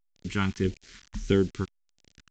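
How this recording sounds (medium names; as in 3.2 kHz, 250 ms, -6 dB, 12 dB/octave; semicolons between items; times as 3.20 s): a quantiser's noise floor 8-bit, dither none; phasing stages 2, 1.6 Hz, lowest notch 460–1200 Hz; A-law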